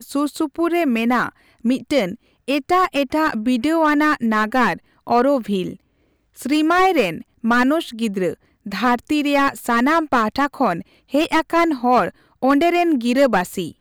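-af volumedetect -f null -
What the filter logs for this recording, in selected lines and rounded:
mean_volume: -18.9 dB
max_volume: -3.9 dB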